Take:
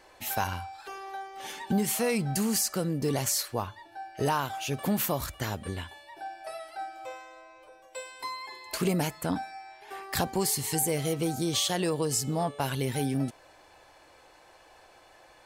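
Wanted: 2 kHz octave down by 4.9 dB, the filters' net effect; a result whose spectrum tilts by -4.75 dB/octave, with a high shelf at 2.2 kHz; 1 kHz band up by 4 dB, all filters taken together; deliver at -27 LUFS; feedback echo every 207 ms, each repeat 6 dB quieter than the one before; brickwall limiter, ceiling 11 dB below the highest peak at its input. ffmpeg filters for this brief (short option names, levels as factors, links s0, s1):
-af "equalizer=f=1000:t=o:g=7.5,equalizer=f=2000:t=o:g=-6.5,highshelf=f=2200:g=-5.5,alimiter=limit=0.0631:level=0:latency=1,aecho=1:1:207|414|621|828|1035|1242:0.501|0.251|0.125|0.0626|0.0313|0.0157,volume=2.11"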